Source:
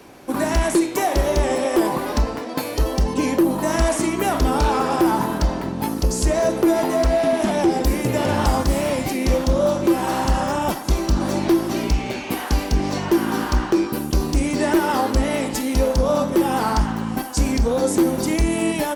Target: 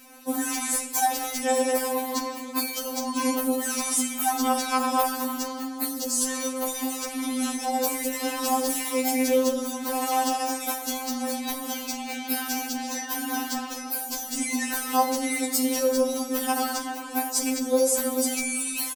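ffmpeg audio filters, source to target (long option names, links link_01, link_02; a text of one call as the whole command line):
ffmpeg -i in.wav -filter_complex "[0:a]aemphasis=mode=production:type=75kf,bandreject=frequency=65.43:width_type=h:width=4,bandreject=frequency=130.86:width_type=h:width=4,bandreject=frequency=196.29:width_type=h:width=4,bandreject=frequency=261.72:width_type=h:width=4,bandreject=frequency=327.15:width_type=h:width=4,bandreject=frequency=392.58:width_type=h:width=4,bandreject=frequency=458.01:width_type=h:width=4,bandreject=frequency=523.44:width_type=h:width=4,bandreject=frequency=588.87:width_type=h:width=4,bandreject=frequency=654.3:width_type=h:width=4,bandreject=frequency=719.73:width_type=h:width=4,bandreject=frequency=785.16:width_type=h:width=4,asplit=2[link_01][link_02];[link_02]aecho=0:1:172:0.0944[link_03];[link_01][link_03]amix=inputs=2:normalize=0,afftfilt=real='re*3.46*eq(mod(b,12),0)':imag='im*3.46*eq(mod(b,12),0)':win_size=2048:overlap=0.75,volume=-5.5dB" out.wav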